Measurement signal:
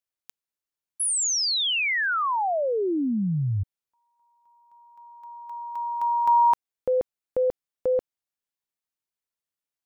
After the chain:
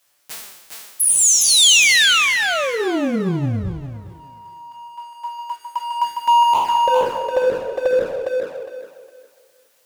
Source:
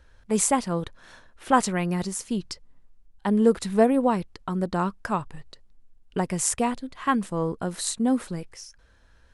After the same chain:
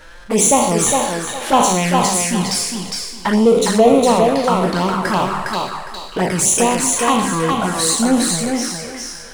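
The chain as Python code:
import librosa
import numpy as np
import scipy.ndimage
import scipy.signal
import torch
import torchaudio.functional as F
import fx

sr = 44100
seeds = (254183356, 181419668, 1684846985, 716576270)

p1 = fx.spec_trails(x, sr, decay_s=0.77)
p2 = fx.low_shelf(p1, sr, hz=210.0, db=-10.5)
p3 = fx.hum_notches(p2, sr, base_hz=50, count=10)
p4 = 10.0 ** (-18.5 / 20.0) * np.tanh(p3 / 10.0 ** (-18.5 / 20.0))
p5 = p3 + F.gain(torch.from_numpy(p4), -11.5).numpy()
p6 = fx.power_curve(p5, sr, exponent=0.7)
p7 = fx.env_flanger(p6, sr, rest_ms=7.0, full_db=-15.0)
p8 = fx.echo_thinned(p7, sr, ms=409, feedback_pct=26, hz=250.0, wet_db=-3)
y = F.gain(torch.from_numpy(p8), 5.5).numpy()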